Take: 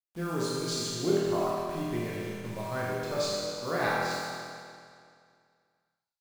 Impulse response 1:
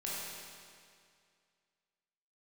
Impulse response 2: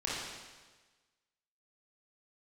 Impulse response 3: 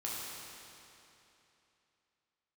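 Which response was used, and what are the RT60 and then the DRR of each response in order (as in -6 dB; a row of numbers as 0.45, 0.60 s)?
1; 2.2, 1.3, 3.0 s; -7.0, -7.0, -6.5 dB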